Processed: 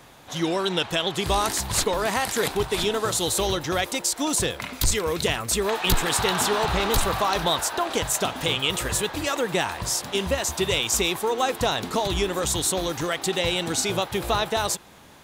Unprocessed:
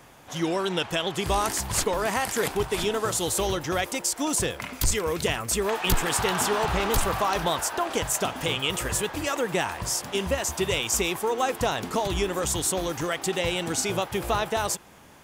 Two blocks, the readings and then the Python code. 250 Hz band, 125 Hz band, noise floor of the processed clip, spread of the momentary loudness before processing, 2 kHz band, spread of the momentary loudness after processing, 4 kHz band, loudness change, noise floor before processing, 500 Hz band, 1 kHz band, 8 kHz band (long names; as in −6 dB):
+1.5 dB, +1.5 dB, −42 dBFS, 3 LU, +2.0 dB, 4 LU, +4.5 dB, +2.0 dB, −44 dBFS, +1.5 dB, +1.5 dB, +1.5 dB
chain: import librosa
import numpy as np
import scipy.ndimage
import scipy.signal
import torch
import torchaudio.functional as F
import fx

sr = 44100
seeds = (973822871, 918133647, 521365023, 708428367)

y = fx.peak_eq(x, sr, hz=3900.0, db=7.5, octaves=0.32)
y = y * 10.0 ** (1.5 / 20.0)